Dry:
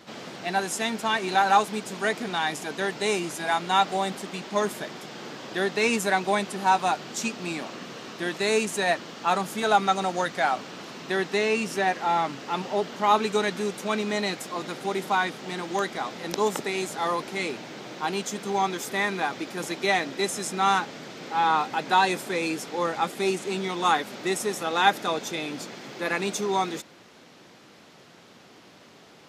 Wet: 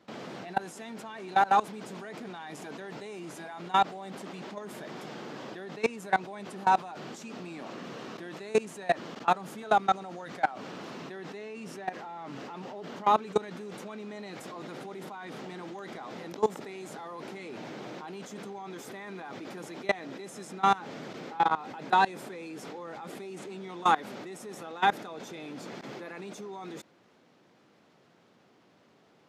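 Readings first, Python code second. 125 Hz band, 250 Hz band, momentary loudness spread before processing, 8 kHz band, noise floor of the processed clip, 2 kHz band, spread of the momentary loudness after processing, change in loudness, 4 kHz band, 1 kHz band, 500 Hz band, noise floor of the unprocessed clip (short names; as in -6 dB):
-7.0 dB, -8.5 dB, 10 LU, -15.0 dB, -63 dBFS, -9.0 dB, 15 LU, -7.0 dB, -12.0 dB, -4.5 dB, -8.0 dB, -52 dBFS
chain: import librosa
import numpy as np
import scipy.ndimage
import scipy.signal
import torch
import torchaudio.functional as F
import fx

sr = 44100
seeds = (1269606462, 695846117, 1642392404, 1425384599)

y = fx.level_steps(x, sr, step_db=21)
y = scipy.signal.sosfilt(scipy.signal.butter(2, 79.0, 'highpass', fs=sr, output='sos'), y)
y = fx.high_shelf(y, sr, hz=2200.0, db=-9.0)
y = y * 10.0 ** (2.0 / 20.0)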